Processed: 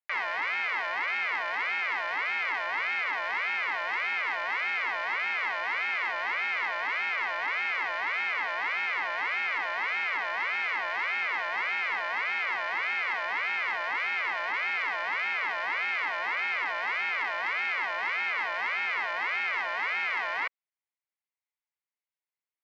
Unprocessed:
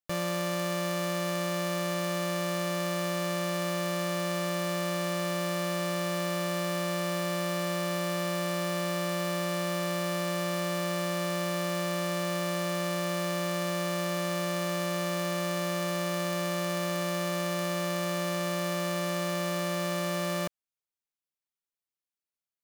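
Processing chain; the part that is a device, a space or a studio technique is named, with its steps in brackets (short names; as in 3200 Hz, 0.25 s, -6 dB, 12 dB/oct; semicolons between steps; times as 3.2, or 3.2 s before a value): voice changer toy (ring modulator with a swept carrier 1600 Hz, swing 25%, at 1.7 Hz; speaker cabinet 510–4100 Hz, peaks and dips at 930 Hz +5 dB, 2100 Hz +9 dB, 3600 Hz -5 dB)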